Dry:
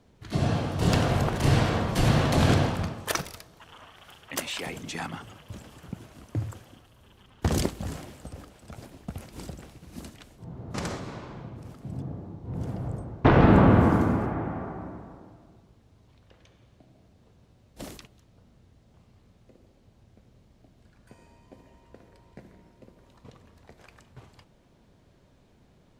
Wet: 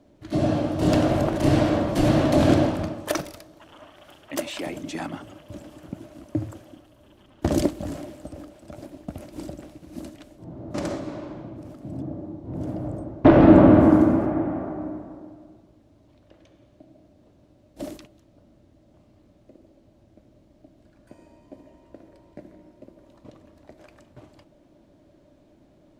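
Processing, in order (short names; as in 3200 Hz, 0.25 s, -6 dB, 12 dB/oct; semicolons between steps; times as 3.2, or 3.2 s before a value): small resonant body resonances 310/590 Hz, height 15 dB, ringing for 45 ms; gain -2 dB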